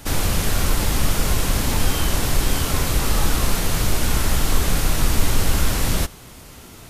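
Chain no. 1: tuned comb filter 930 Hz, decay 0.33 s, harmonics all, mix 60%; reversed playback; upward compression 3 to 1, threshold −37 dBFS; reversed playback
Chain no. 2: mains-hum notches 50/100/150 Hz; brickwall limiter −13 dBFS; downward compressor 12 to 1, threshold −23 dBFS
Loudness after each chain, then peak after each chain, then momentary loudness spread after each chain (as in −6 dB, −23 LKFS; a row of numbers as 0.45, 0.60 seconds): −29.5, −30.5 LKFS; −10.0, −15.0 dBFS; 2, 2 LU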